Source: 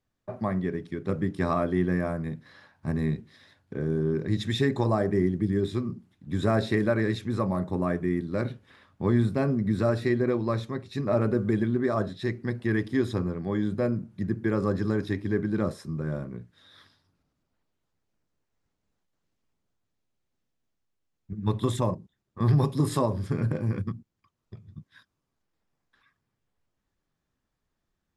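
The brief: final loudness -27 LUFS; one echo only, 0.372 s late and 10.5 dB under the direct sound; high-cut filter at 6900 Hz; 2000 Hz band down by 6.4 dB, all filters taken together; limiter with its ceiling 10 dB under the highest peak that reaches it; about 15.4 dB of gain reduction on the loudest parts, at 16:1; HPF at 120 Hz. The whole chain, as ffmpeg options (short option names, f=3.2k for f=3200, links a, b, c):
-af "highpass=120,lowpass=6.9k,equalizer=f=2k:t=o:g=-8,acompressor=threshold=-35dB:ratio=16,alimiter=level_in=10dB:limit=-24dB:level=0:latency=1,volume=-10dB,aecho=1:1:372:0.299,volume=17dB"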